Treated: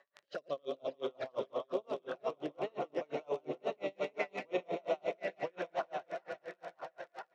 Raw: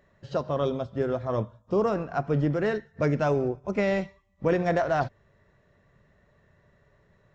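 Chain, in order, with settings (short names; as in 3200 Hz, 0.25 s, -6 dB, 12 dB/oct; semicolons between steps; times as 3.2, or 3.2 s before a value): regenerating reverse delay 0.208 s, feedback 65%, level -4.5 dB; AGC gain up to 5.5 dB; limiter -16.5 dBFS, peak gain reduction 10.5 dB; compressor 1.5:1, threshold -39 dBFS, peak gain reduction 7 dB; envelope flanger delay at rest 7.4 ms, full sweep at -27.5 dBFS; rotary speaker horn 0.6 Hz; crackle 30/s -42 dBFS; BPF 700–4500 Hz; feedback echo 0.985 s, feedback 23%, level -4.5 dB; dB-linear tremolo 5.7 Hz, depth 37 dB; gain +10 dB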